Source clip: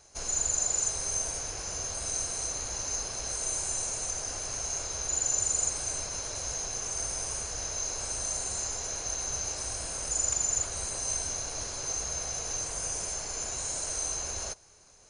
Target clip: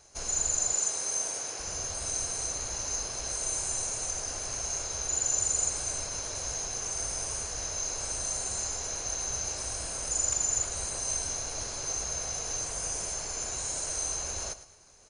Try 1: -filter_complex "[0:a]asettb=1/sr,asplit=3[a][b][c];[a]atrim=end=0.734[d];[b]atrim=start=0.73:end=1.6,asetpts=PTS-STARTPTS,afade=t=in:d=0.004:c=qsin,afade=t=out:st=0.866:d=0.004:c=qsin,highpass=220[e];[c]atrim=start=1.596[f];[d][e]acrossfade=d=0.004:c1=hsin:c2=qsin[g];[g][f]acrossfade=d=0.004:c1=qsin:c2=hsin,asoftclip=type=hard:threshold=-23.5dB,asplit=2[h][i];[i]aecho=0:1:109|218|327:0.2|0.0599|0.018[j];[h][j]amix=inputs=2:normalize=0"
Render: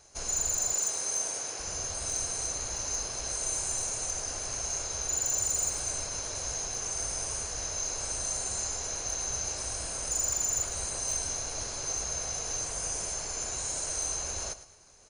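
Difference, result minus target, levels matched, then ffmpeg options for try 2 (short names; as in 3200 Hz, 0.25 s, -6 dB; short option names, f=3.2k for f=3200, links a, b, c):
hard clip: distortion +33 dB
-filter_complex "[0:a]asettb=1/sr,asplit=3[a][b][c];[a]atrim=end=0.734[d];[b]atrim=start=0.73:end=1.6,asetpts=PTS-STARTPTS,afade=t=in:d=0.004:c=qsin,afade=t=out:st=0.866:d=0.004:c=qsin,highpass=220[e];[c]atrim=start=1.596[f];[d][e]acrossfade=d=0.004:c1=hsin:c2=qsin[g];[g][f]acrossfade=d=0.004:c1=qsin:c2=hsin,asoftclip=type=hard:threshold=-17dB,asplit=2[h][i];[i]aecho=0:1:109|218|327:0.2|0.0599|0.018[j];[h][j]amix=inputs=2:normalize=0"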